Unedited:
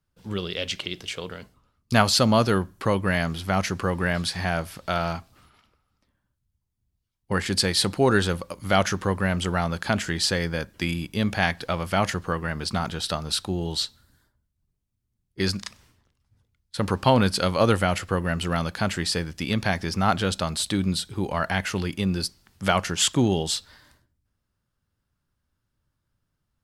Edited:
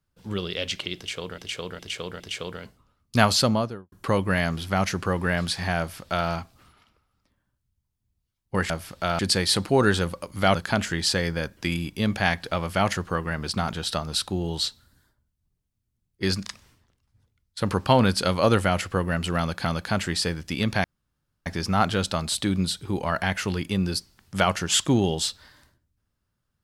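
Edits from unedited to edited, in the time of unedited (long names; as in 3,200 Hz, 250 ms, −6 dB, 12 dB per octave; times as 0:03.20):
0:00.97–0:01.38: repeat, 4 plays
0:02.09–0:02.69: fade out and dull
0:04.56–0:05.05: duplicate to 0:07.47
0:08.83–0:09.72: remove
0:18.55–0:18.82: repeat, 2 plays
0:19.74: splice in room tone 0.62 s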